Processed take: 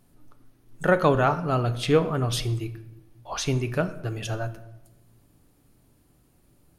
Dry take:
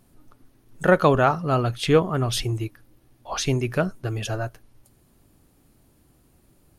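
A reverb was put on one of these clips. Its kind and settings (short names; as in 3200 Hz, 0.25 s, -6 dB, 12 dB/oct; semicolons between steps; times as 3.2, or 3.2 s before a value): shoebox room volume 400 m³, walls mixed, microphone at 0.36 m; gain -3 dB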